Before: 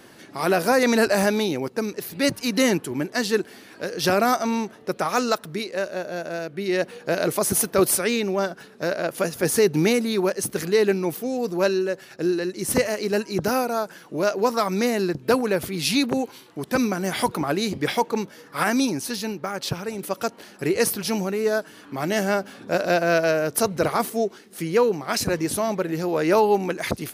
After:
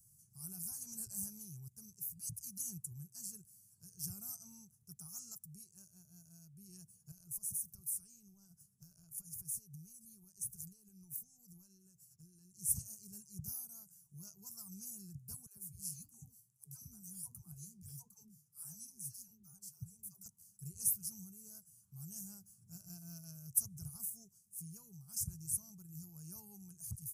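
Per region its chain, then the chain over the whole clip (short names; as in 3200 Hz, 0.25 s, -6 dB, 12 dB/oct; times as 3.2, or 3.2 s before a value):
7.11–12.54 compressor 12:1, threshold -27 dBFS + mismatched tape noise reduction decoder only
15.46–20.26 dispersion lows, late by 0.114 s, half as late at 420 Hz + flange 1.5 Hz, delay 5.6 ms, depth 4.9 ms, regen -78%
whole clip: inverse Chebyshev band-stop 260–4000 Hz, stop band 40 dB; low shelf 290 Hz -4.5 dB; gain -6 dB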